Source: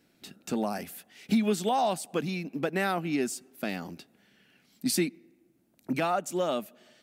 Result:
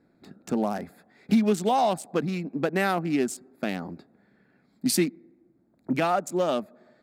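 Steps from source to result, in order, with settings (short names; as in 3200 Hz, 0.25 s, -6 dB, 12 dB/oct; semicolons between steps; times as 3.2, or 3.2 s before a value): Wiener smoothing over 15 samples; gain +4 dB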